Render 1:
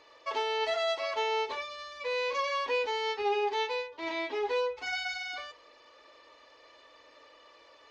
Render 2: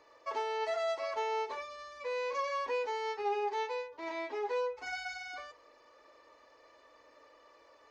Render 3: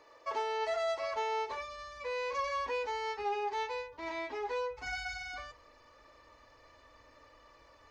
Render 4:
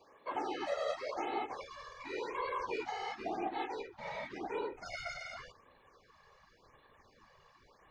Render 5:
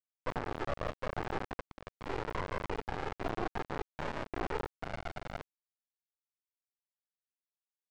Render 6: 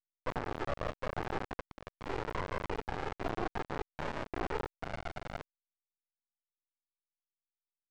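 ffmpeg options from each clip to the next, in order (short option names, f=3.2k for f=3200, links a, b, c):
-filter_complex "[0:a]equalizer=f=3.3k:w=1.3:g=-10.5,acrossover=split=350[a][b];[a]acompressor=threshold=-53dB:ratio=6[c];[c][b]amix=inputs=2:normalize=0,volume=-2dB"
-filter_complex "[0:a]asubboost=boost=8.5:cutoff=140,asplit=2[a][b];[b]asoftclip=type=tanh:threshold=-37.5dB,volume=-11dB[c];[a][c]amix=inputs=2:normalize=0"
-af "afreqshift=-68,afftfilt=real='hypot(re,im)*cos(2*PI*random(0))':imag='hypot(re,im)*sin(2*PI*random(1))':win_size=512:overlap=0.75,afftfilt=real='re*(1-between(b*sr/1024,250*pow(6400/250,0.5+0.5*sin(2*PI*0.91*pts/sr))/1.41,250*pow(6400/250,0.5+0.5*sin(2*PI*0.91*pts/sr))*1.41))':imag='im*(1-between(b*sr/1024,250*pow(6400/250,0.5+0.5*sin(2*PI*0.91*pts/sr))/1.41,250*pow(6400/250,0.5+0.5*sin(2*PI*0.91*pts/sr))*1.41))':win_size=1024:overlap=0.75,volume=3dB"
-af "acompressor=threshold=-42dB:ratio=16,aresample=11025,acrusher=bits=4:dc=4:mix=0:aa=0.000001,aresample=44100,adynamicsmooth=sensitivity=5.5:basefreq=670,volume=14dB"
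-af "aeval=exprs='abs(val(0))':c=same"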